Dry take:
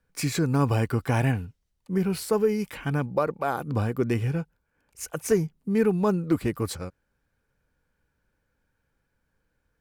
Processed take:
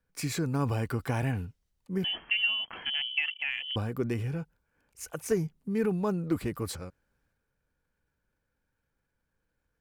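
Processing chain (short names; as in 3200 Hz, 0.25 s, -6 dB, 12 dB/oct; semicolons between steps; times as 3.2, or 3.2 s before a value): 2.04–3.76 inverted band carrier 3200 Hz; transient shaper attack +2 dB, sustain +6 dB; gain -7 dB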